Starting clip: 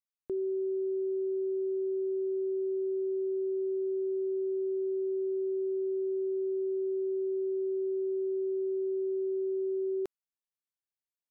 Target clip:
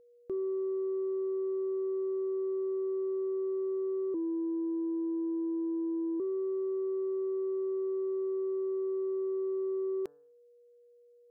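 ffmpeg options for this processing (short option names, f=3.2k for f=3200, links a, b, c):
-filter_complex "[0:a]bandreject=f=145.3:t=h:w=4,bandreject=f=290.6:t=h:w=4,bandreject=f=435.9:t=h:w=4,bandreject=f=581.2:t=h:w=4,bandreject=f=726.5:t=h:w=4,bandreject=f=871.8:t=h:w=4,bandreject=f=1.0171k:t=h:w=4,bandreject=f=1.1624k:t=h:w=4,bandreject=f=1.3077k:t=h:w=4,bandreject=f=1.453k:t=h:w=4,bandreject=f=1.5983k:t=h:w=4,bandreject=f=1.7436k:t=h:w=4,asettb=1/sr,asplit=3[a][b][c];[a]atrim=end=4.144[d];[b]atrim=start=4.14:end=6.2,asetpts=PTS-STARTPTS,afade=t=in:d=0.004:c=qsin,afade=t=out:st=2.056:d=0.004:c=qsin,afreqshift=-52[e];[c]atrim=start=6.196[f];[d][e]acrossfade=d=0.004:c1=hsin:c2=qsin[g];[g][f]acrossfade=d=0.004:c1=qsin:c2=hsin,asoftclip=type=tanh:threshold=-26dB,aeval=exprs='val(0)+0.00126*sin(2*PI*480*n/s)':c=same"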